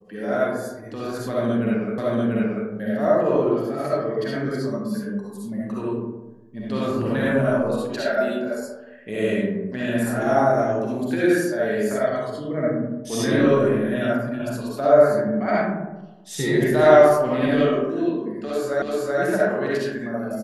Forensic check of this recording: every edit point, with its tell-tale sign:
1.98 repeat of the last 0.69 s
18.82 repeat of the last 0.38 s

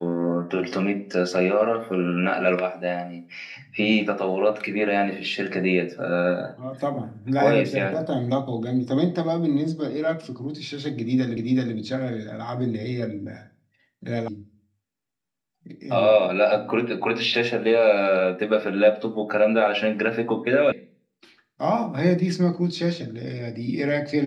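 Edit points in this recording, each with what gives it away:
11.37 repeat of the last 0.38 s
14.28 sound cut off
20.72 sound cut off

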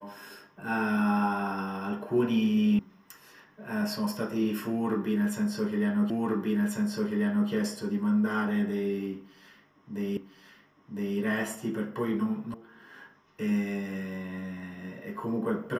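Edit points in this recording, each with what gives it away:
2.79 sound cut off
6.1 repeat of the last 1.39 s
10.17 repeat of the last 1.01 s
12.54 sound cut off

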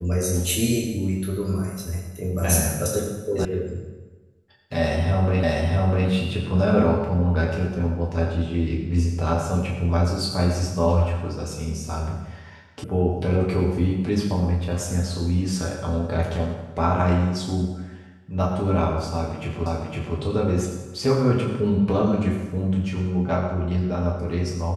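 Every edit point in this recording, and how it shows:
3.45 sound cut off
5.43 repeat of the last 0.65 s
12.84 sound cut off
19.66 repeat of the last 0.51 s

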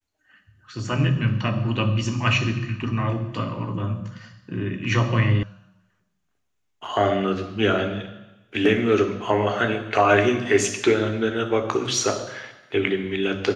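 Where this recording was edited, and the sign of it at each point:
5.43 sound cut off

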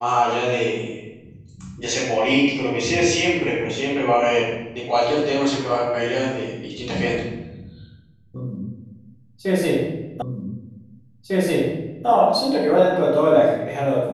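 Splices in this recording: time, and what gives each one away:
10.22 repeat of the last 1.85 s

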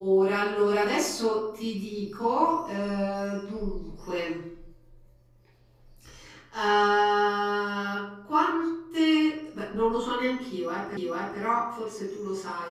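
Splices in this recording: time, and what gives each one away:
10.97 repeat of the last 0.44 s

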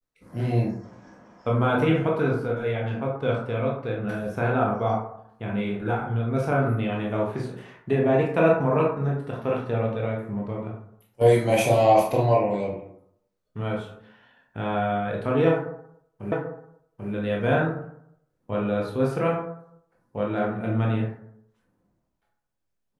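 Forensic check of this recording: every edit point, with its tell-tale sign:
16.32 repeat of the last 0.79 s

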